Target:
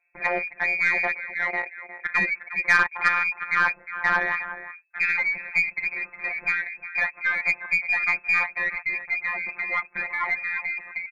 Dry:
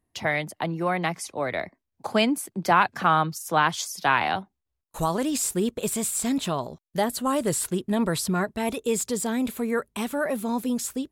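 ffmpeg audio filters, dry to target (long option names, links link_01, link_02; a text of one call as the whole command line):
ffmpeg -i in.wav -filter_complex "[0:a]afftfilt=real='hypot(re,im)*cos(PI*b)':imag='0':win_size=1024:overlap=0.75,lowpass=frequency=2200:width_type=q:width=0.5098,lowpass=frequency=2200:width_type=q:width=0.6013,lowpass=frequency=2200:width_type=q:width=0.9,lowpass=frequency=2200:width_type=q:width=2.563,afreqshift=-2600,asplit=2[link_01][link_02];[link_02]acompressor=threshold=-40dB:ratio=6,volume=-2dB[link_03];[link_01][link_03]amix=inputs=2:normalize=0,aecho=1:1:359:0.211,asoftclip=type=tanh:threshold=-12dB,aeval=exprs='0.251*(cos(1*acos(clip(val(0)/0.251,-1,1)))-cos(1*PI/2))+0.01*(cos(4*acos(clip(val(0)/0.251,-1,1)))-cos(4*PI/2))':channel_layout=same,volume=4dB" out.wav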